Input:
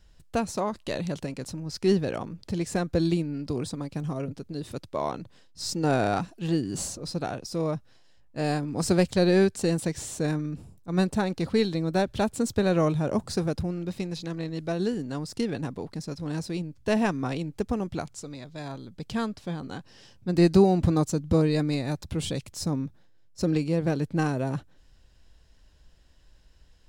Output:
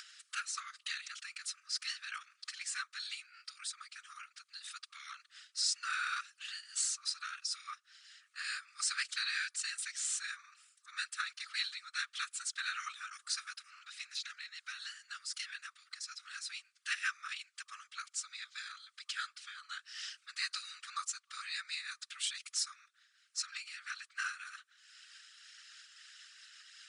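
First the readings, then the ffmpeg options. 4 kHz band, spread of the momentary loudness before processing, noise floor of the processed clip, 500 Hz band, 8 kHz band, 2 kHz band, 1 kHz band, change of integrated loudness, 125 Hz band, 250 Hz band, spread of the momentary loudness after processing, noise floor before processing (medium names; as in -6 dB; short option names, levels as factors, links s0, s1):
0.0 dB, 13 LU, -76 dBFS, under -40 dB, 0.0 dB, -1.0 dB, -12.5 dB, -12.0 dB, under -40 dB, under -40 dB, 16 LU, -56 dBFS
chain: -af "acompressor=mode=upward:threshold=0.0447:ratio=2.5,afftfilt=real='re*between(b*sr/4096,1200,10000)':imag='im*between(b*sr/4096,1200,10000)':win_size=4096:overlap=0.75,afftfilt=real='hypot(re,im)*cos(2*PI*random(0))':imag='hypot(re,im)*sin(2*PI*random(1))':win_size=512:overlap=0.75,volume=1.78"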